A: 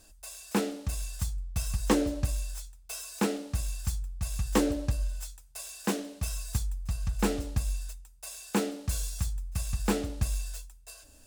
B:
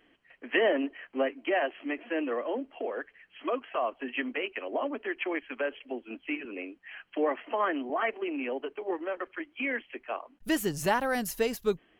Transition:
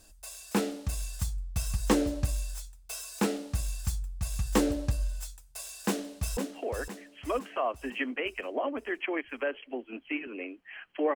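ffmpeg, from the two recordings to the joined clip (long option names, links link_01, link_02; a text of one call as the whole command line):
ffmpeg -i cue0.wav -i cue1.wav -filter_complex "[0:a]apad=whole_dur=11.15,atrim=end=11.15,atrim=end=6.372[link_01];[1:a]atrim=start=2.548:end=7.33[link_02];[link_01][link_02]acrossfade=duration=0.004:curve1=hsin:curve2=hsin,asplit=2[link_03][link_04];[link_04]afade=type=in:start_time=5.8:duration=0.01,afade=type=out:start_time=6.37:duration=0.01,aecho=0:1:510|1020|1530|2040|2550|3060:0.398107|0.199054|0.0995268|0.0497634|0.0248817|0.0124408[link_05];[link_03][link_05]amix=inputs=2:normalize=0" out.wav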